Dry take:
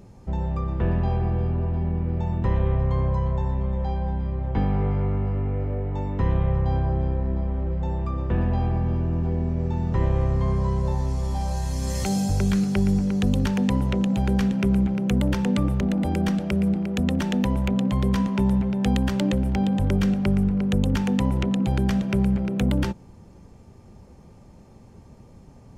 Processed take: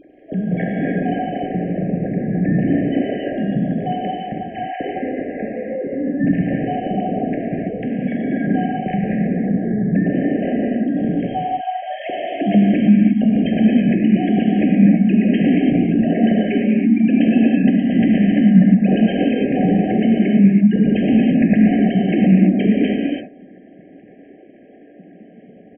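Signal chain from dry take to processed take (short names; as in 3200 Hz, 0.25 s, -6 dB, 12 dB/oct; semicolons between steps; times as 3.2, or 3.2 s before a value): sine-wave speech; FFT band-reject 820–1700 Hz; in parallel at -2.5 dB: compressor, threshold -27 dBFS, peak gain reduction 15.5 dB; on the sum: pitch shift -1 st; non-linear reverb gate 0.36 s flat, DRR -3.5 dB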